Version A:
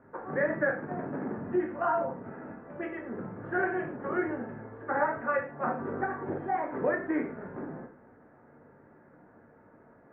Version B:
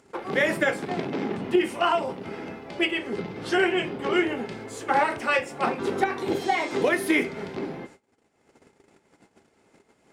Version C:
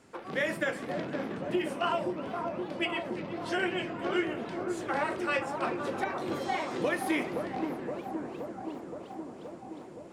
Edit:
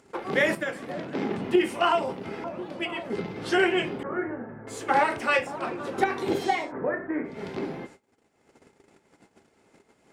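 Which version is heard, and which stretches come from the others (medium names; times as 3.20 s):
B
0.55–1.15 s: from C
2.44–3.10 s: from C
4.03–4.67 s: from A
5.47–5.98 s: from C
6.61–7.36 s: from A, crossfade 0.24 s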